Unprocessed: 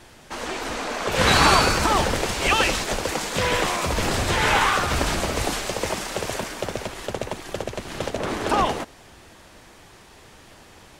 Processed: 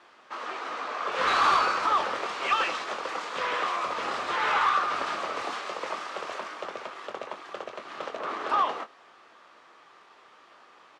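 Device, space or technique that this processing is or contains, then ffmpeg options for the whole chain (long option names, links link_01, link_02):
intercom: -filter_complex "[0:a]highpass=420,lowpass=3900,equalizer=frequency=1200:width_type=o:width=0.4:gain=11,asoftclip=type=tanh:threshold=-9.5dB,asplit=2[link_01][link_02];[link_02]adelay=23,volume=-9dB[link_03];[link_01][link_03]amix=inputs=2:normalize=0,volume=-7.5dB"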